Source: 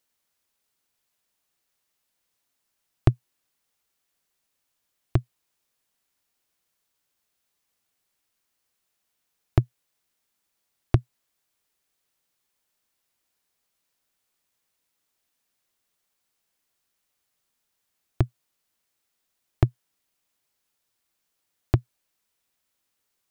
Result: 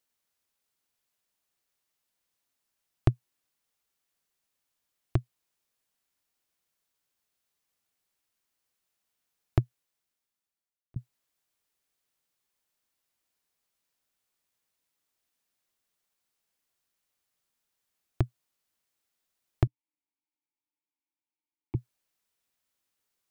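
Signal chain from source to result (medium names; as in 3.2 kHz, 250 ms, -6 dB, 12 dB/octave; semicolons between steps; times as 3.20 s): 9.61–10.96 s: fade out; 19.67–21.75 s: vowel filter u; trim -4.5 dB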